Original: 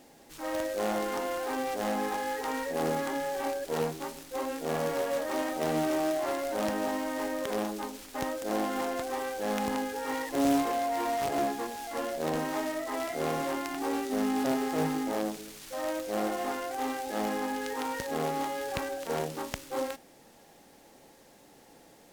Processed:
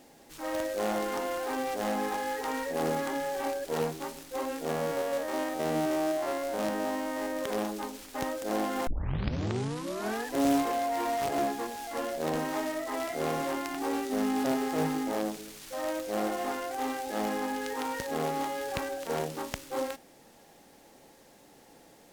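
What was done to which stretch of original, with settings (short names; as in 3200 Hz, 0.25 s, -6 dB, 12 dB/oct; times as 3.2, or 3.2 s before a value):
4.71–7.37 stepped spectrum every 50 ms
8.87 tape start 1.51 s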